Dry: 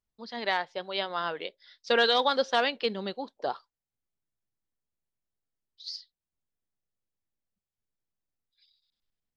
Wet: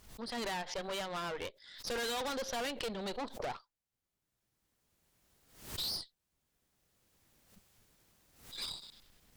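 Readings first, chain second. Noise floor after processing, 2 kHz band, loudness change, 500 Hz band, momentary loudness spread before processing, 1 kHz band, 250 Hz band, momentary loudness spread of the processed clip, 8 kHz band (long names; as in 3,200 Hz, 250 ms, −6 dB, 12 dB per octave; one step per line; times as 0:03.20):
below −85 dBFS, −11.0 dB, −10.0 dB, −10.0 dB, 18 LU, −10.5 dB, −5.0 dB, 12 LU, can't be measured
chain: camcorder AGC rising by 15 dB per second
tube saturation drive 36 dB, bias 0.8
background raised ahead of every attack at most 100 dB per second
level +1 dB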